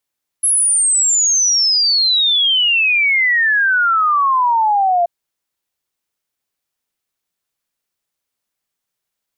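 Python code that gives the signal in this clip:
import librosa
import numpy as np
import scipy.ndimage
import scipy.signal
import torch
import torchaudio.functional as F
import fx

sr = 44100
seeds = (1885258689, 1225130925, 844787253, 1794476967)

y = fx.ess(sr, length_s=4.63, from_hz=11000.0, to_hz=680.0, level_db=-11.0)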